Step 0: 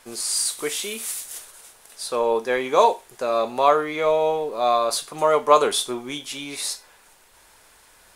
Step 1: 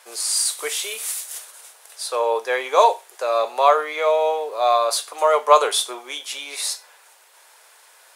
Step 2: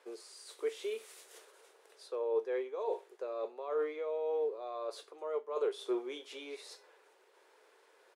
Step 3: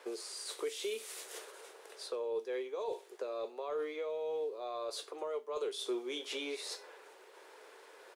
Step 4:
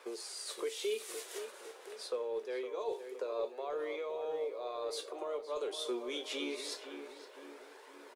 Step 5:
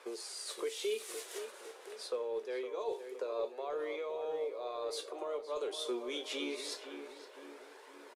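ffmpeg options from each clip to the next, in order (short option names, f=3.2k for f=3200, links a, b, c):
-af "highpass=f=480:w=0.5412,highpass=f=480:w=1.3066,volume=2.5dB"
-af "areverse,acompressor=threshold=-28dB:ratio=8,areverse,firequalizer=gain_entry='entry(240,0);entry(390,8);entry(650,-10);entry(6800,-21);entry(11000,-26)':delay=0.05:min_phase=1,volume=-2dB"
-filter_complex "[0:a]acrossover=split=200|3000[a][b][c];[b]acompressor=threshold=-48dB:ratio=4[d];[a][d][c]amix=inputs=3:normalize=0,volume=9dB"
-filter_complex "[0:a]flanger=delay=0.8:depth=3.4:regen=63:speed=0.25:shape=triangular,asplit=2[a][b];[b]adelay=513,lowpass=f=2k:p=1,volume=-8.5dB,asplit=2[c][d];[d]adelay=513,lowpass=f=2k:p=1,volume=0.54,asplit=2[e][f];[f]adelay=513,lowpass=f=2k:p=1,volume=0.54,asplit=2[g][h];[h]adelay=513,lowpass=f=2k:p=1,volume=0.54,asplit=2[i][j];[j]adelay=513,lowpass=f=2k:p=1,volume=0.54,asplit=2[k][l];[l]adelay=513,lowpass=f=2k:p=1,volume=0.54[m];[a][c][e][g][i][k][m]amix=inputs=7:normalize=0,volume=4.5dB"
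-af "aresample=32000,aresample=44100"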